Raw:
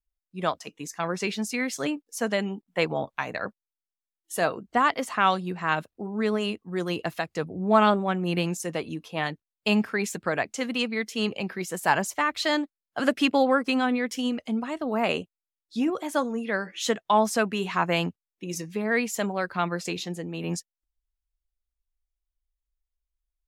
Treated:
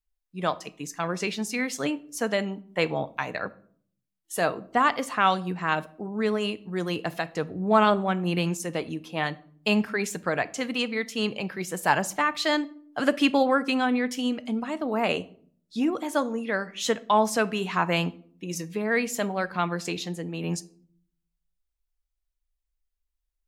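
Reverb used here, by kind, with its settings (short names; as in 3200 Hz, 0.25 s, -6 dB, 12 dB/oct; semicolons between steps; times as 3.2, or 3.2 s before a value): shoebox room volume 700 m³, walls furnished, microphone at 0.43 m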